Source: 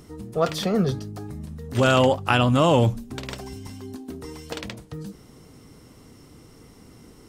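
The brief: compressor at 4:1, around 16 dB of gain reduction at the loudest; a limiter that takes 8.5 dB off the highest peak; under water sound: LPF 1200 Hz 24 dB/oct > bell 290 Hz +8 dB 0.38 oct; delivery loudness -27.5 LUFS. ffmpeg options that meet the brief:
-af "acompressor=threshold=-34dB:ratio=4,alimiter=level_in=2.5dB:limit=-24dB:level=0:latency=1,volume=-2.5dB,lowpass=f=1.2k:w=0.5412,lowpass=f=1.2k:w=1.3066,equalizer=f=290:t=o:w=0.38:g=8,volume=11dB"

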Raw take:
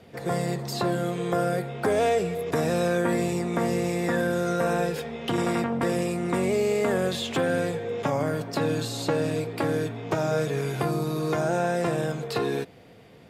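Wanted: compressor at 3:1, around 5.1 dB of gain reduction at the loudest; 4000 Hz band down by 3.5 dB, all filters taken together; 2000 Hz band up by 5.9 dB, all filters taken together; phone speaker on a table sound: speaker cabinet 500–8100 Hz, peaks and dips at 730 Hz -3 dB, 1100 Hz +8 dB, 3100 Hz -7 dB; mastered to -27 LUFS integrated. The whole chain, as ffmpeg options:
-af "equalizer=f=2k:t=o:g=8,equalizer=f=4k:t=o:g=-3.5,acompressor=threshold=-26dB:ratio=3,highpass=f=500:w=0.5412,highpass=f=500:w=1.3066,equalizer=f=730:t=q:w=4:g=-3,equalizer=f=1.1k:t=q:w=4:g=8,equalizer=f=3.1k:t=q:w=4:g=-7,lowpass=f=8.1k:w=0.5412,lowpass=f=8.1k:w=1.3066,volume=5dB"

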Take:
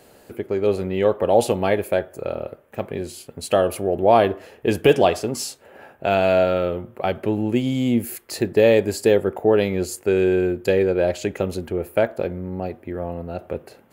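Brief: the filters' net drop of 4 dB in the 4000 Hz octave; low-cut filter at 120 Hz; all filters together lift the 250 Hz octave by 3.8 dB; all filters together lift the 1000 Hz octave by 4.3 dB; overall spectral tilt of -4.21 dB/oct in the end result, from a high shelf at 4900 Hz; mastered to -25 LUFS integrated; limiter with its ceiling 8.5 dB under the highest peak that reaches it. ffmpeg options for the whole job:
-af "highpass=120,equalizer=f=250:t=o:g=5,equalizer=f=1k:t=o:g=6.5,equalizer=f=4k:t=o:g=-7.5,highshelf=f=4.9k:g=3,volume=-4dB,alimiter=limit=-12dB:level=0:latency=1"

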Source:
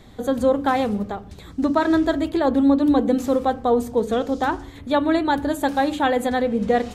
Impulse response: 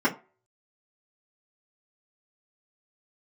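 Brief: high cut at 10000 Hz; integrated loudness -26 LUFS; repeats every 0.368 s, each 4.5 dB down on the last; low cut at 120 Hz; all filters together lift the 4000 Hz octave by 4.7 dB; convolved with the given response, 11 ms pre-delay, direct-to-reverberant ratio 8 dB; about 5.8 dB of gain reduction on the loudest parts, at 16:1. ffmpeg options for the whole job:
-filter_complex "[0:a]highpass=120,lowpass=10k,equalizer=f=4k:t=o:g=5.5,acompressor=threshold=-19dB:ratio=16,aecho=1:1:368|736|1104|1472|1840|2208|2576|2944|3312:0.596|0.357|0.214|0.129|0.0772|0.0463|0.0278|0.0167|0.01,asplit=2[a][b];[1:a]atrim=start_sample=2205,adelay=11[c];[b][c]afir=irnorm=-1:irlink=0,volume=-22dB[d];[a][d]amix=inputs=2:normalize=0,volume=-4.5dB"

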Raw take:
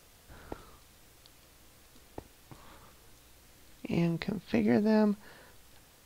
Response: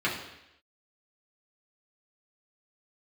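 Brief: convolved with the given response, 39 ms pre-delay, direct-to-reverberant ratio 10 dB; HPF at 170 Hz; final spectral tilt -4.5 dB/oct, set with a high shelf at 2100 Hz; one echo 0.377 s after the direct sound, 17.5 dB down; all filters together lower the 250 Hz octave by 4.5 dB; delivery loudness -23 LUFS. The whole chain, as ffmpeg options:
-filter_complex "[0:a]highpass=170,equalizer=f=250:t=o:g=-4,highshelf=f=2.1k:g=7,aecho=1:1:377:0.133,asplit=2[a][b];[1:a]atrim=start_sample=2205,adelay=39[c];[b][c]afir=irnorm=-1:irlink=0,volume=-21.5dB[d];[a][d]amix=inputs=2:normalize=0,volume=10dB"

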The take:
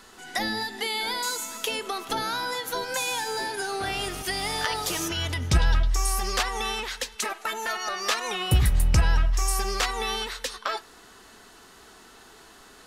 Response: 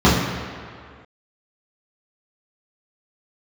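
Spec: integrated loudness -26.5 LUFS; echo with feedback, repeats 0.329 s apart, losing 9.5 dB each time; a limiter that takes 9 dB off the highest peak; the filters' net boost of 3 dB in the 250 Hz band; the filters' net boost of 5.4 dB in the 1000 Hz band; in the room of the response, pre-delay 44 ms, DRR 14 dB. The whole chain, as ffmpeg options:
-filter_complex "[0:a]equalizer=f=250:t=o:g=4,equalizer=f=1k:t=o:g=6.5,alimiter=limit=-17.5dB:level=0:latency=1,aecho=1:1:329|658|987|1316:0.335|0.111|0.0365|0.012,asplit=2[a][b];[1:a]atrim=start_sample=2205,adelay=44[c];[b][c]afir=irnorm=-1:irlink=0,volume=-39.5dB[d];[a][d]amix=inputs=2:normalize=0"

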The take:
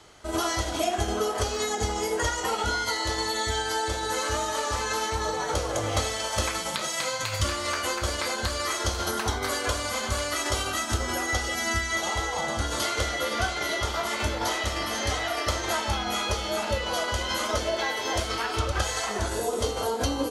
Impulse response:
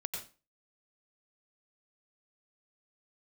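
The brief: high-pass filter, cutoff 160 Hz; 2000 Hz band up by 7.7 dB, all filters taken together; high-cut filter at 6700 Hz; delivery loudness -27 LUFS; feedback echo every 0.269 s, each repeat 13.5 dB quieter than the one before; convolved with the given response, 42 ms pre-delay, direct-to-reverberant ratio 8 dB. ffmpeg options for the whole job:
-filter_complex "[0:a]highpass=160,lowpass=6.7k,equalizer=f=2k:t=o:g=9,aecho=1:1:269|538:0.211|0.0444,asplit=2[a][b];[1:a]atrim=start_sample=2205,adelay=42[c];[b][c]afir=irnorm=-1:irlink=0,volume=-9dB[d];[a][d]amix=inputs=2:normalize=0,volume=-3.5dB"

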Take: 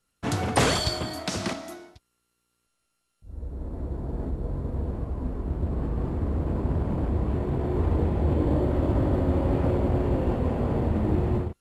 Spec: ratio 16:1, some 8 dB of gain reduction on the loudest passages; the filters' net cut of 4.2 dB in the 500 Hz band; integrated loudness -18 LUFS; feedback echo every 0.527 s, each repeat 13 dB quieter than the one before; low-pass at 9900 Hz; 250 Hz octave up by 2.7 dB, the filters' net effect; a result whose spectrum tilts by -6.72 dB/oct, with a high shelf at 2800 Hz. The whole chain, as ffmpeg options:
-af "lowpass=9.9k,equalizer=f=250:t=o:g=6,equalizer=f=500:t=o:g=-8.5,highshelf=f=2.8k:g=-3.5,acompressor=threshold=-26dB:ratio=16,aecho=1:1:527|1054|1581:0.224|0.0493|0.0108,volume=14dB"

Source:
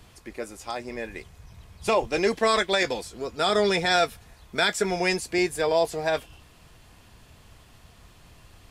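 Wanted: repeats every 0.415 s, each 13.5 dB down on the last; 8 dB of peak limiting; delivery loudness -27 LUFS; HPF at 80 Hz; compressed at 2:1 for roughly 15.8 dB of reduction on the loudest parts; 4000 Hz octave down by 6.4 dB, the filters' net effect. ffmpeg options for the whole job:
-af "highpass=80,equalizer=f=4k:t=o:g=-8,acompressor=threshold=-48dB:ratio=2,alimiter=level_in=9dB:limit=-24dB:level=0:latency=1,volume=-9dB,aecho=1:1:415|830:0.211|0.0444,volume=18dB"

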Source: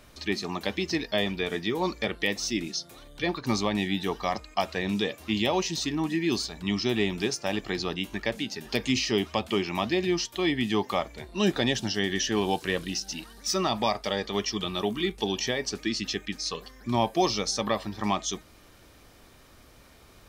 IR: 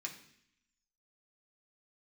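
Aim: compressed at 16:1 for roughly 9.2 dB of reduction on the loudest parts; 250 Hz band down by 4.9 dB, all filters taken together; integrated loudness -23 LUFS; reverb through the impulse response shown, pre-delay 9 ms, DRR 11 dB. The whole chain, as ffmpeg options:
-filter_complex "[0:a]equalizer=f=250:t=o:g=-7,acompressor=threshold=-30dB:ratio=16,asplit=2[a][b];[1:a]atrim=start_sample=2205,adelay=9[c];[b][c]afir=irnorm=-1:irlink=0,volume=-10dB[d];[a][d]amix=inputs=2:normalize=0,volume=12dB"

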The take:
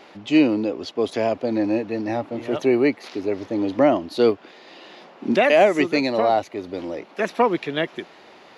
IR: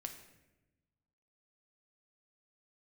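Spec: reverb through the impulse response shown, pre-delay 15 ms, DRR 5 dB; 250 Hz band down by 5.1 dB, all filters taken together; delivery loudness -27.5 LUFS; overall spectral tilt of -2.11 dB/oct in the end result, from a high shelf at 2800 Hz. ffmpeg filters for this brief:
-filter_complex "[0:a]equalizer=f=250:t=o:g=-7,highshelf=f=2.8k:g=8.5,asplit=2[a][b];[1:a]atrim=start_sample=2205,adelay=15[c];[b][c]afir=irnorm=-1:irlink=0,volume=-2dB[d];[a][d]amix=inputs=2:normalize=0,volume=-6dB"

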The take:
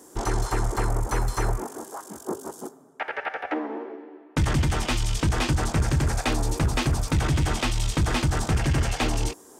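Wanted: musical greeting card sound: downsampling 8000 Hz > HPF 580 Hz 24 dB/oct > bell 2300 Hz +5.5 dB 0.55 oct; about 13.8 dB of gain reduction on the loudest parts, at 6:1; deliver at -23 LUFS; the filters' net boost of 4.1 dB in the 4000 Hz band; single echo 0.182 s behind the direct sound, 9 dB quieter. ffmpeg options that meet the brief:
-af "equalizer=f=4k:t=o:g=4,acompressor=threshold=-34dB:ratio=6,aecho=1:1:182:0.355,aresample=8000,aresample=44100,highpass=f=580:w=0.5412,highpass=f=580:w=1.3066,equalizer=f=2.3k:t=o:w=0.55:g=5.5,volume=18dB"

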